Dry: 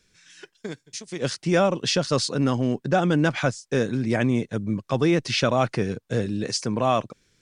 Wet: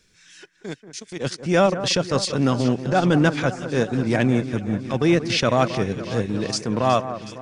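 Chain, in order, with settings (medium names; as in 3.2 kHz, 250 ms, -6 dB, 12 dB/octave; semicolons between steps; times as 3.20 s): transient shaper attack -7 dB, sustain -11 dB; echo whose repeats swap between lows and highs 184 ms, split 1.9 kHz, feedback 81%, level -12 dB; trim +4 dB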